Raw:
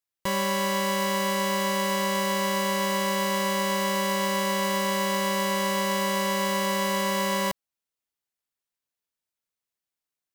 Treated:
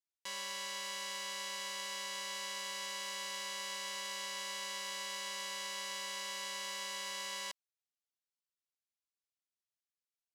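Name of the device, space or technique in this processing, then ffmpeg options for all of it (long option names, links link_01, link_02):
piezo pickup straight into a mixer: -af "lowpass=5400,aderivative,volume=-2dB"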